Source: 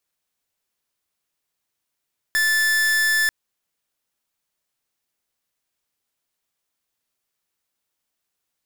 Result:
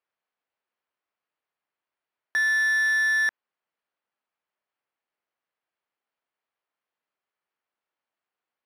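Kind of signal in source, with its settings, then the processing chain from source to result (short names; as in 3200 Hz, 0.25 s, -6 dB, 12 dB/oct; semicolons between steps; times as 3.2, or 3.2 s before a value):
pulse 1750 Hz, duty 44% -19 dBFS 0.94 s
careless resampling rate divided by 6×, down filtered, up hold; band-pass 1000 Hz, Q 0.54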